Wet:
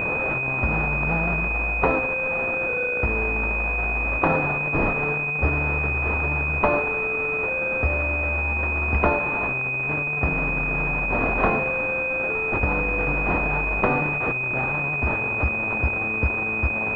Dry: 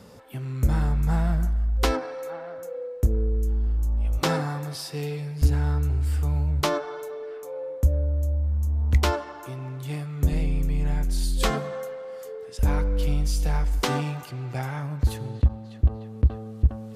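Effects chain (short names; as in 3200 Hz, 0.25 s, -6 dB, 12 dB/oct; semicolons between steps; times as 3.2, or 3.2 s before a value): delta modulation 64 kbps, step -27 dBFS; tilt +3 dB/oct; pulse-width modulation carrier 2500 Hz; gain +6 dB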